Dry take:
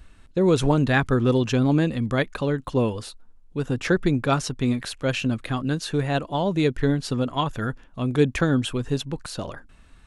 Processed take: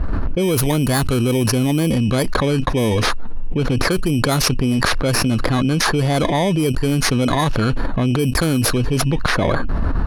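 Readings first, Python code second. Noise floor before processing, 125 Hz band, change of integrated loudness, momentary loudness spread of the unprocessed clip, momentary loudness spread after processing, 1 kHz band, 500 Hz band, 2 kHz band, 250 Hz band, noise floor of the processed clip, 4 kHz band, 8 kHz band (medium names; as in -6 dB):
-52 dBFS, +6.0 dB, +5.5 dB, 11 LU, 4 LU, +6.5 dB, +4.0 dB, +6.5 dB, +5.0 dB, -20 dBFS, +9.5 dB, +13.5 dB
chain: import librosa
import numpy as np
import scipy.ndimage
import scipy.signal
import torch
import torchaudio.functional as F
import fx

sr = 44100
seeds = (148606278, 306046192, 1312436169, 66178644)

y = fx.bit_reversed(x, sr, seeds[0], block=16)
y = fx.env_lowpass(y, sr, base_hz=1400.0, full_db=-15.5)
y = fx.env_flatten(y, sr, amount_pct=100)
y = y * 10.0 ** (-2.5 / 20.0)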